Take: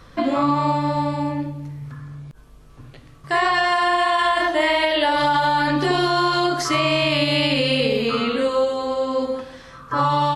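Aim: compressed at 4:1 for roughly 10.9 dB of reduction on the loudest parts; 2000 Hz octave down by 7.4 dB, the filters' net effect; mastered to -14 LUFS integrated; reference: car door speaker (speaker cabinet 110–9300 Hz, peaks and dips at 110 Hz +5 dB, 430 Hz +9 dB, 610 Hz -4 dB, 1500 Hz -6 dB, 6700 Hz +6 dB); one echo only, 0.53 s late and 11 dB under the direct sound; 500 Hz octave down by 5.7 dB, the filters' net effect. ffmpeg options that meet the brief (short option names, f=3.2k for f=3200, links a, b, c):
-af "equalizer=f=500:t=o:g=-8,equalizer=f=2k:t=o:g=-6.5,acompressor=threshold=-32dB:ratio=4,highpass=110,equalizer=f=110:t=q:w=4:g=5,equalizer=f=430:t=q:w=4:g=9,equalizer=f=610:t=q:w=4:g=-4,equalizer=f=1.5k:t=q:w=4:g=-6,equalizer=f=6.7k:t=q:w=4:g=6,lowpass=f=9.3k:w=0.5412,lowpass=f=9.3k:w=1.3066,aecho=1:1:530:0.282,volume=19.5dB"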